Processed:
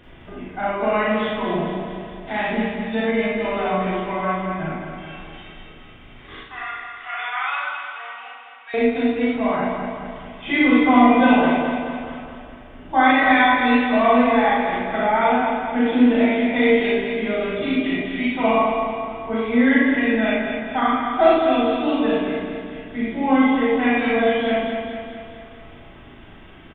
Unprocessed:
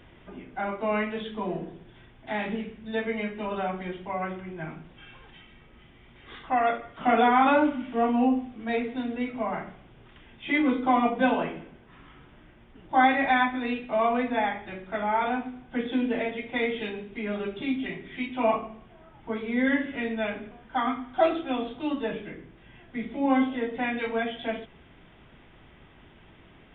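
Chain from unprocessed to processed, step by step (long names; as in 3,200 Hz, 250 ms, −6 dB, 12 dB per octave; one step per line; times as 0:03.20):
0:06.36–0:08.74: four-pole ladder high-pass 1,200 Hz, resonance 25%
double-tracking delay 37 ms −5 dB
repeating echo 213 ms, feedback 56%, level −6 dB
convolution reverb RT60 0.35 s, pre-delay 38 ms, DRR −1.5 dB
level +3 dB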